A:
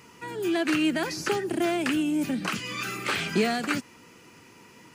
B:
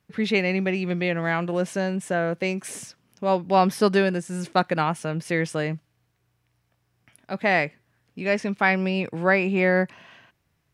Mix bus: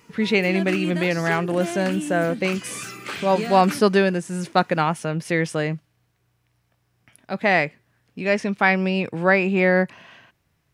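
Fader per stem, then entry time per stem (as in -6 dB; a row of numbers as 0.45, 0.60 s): -4.0, +2.5 dB; 0.00, 0.00 s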